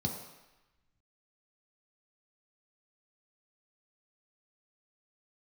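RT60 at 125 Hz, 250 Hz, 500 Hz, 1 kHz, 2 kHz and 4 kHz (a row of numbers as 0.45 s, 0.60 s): 0.85 s, 0.85 s, 0.95 s, 1.1 s, 1.2 s, 1.0 s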